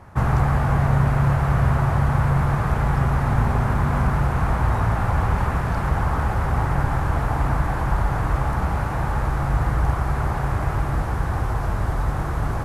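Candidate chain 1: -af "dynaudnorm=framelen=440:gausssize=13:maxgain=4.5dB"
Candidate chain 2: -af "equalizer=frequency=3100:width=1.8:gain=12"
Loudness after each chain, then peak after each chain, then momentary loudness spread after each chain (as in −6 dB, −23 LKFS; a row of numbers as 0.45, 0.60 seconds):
−20.0, −22.0 LKFS; −4.5, −6.5 dBFS; 6, 5 LU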